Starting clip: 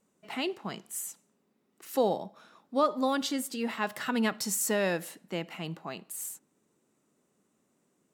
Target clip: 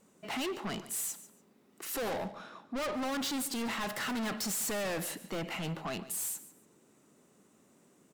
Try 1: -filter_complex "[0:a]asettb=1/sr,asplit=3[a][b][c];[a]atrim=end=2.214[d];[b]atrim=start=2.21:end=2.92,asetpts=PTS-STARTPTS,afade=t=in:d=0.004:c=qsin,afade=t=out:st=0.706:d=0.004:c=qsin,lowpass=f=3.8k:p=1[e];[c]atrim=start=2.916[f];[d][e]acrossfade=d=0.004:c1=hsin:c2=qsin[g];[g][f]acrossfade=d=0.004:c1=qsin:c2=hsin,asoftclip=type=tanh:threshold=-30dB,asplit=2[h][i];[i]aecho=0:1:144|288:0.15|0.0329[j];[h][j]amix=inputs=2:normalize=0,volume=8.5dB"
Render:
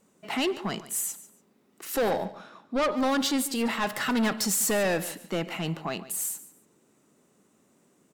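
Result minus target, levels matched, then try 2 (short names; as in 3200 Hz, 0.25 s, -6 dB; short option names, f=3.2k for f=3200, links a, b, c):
soft clip: distortion -5 dB
-filter_complex "[0:a]asettb=1/sr,asplit=3[a][b][c];[a]atrim=end=2.214[d];[b]atrim=start=2.21:end=2.92,asetpts=PTS-STARTPTS,afade=t=in:d=0.004:c=qsin,afade=t=out:st=0.706:d=0.004:c=qsin,lowpass=f=3.8k:p=1[e];[c]atrim=start=2.916[f];[d][e]acrossfade=d=0.004:c1=hsin:c2=qsin[g];[g][f]acrossfade=d=0.004:c1=qsin:c2=hsin,asoftclip=type=tanh:threshold=-41.5dB,asplit=2[h][i];[i]aecho=0:1:144|288:0.15|0.0329[j];[h][j]amix=inputs=2:normalize=0,volume=8.5dB"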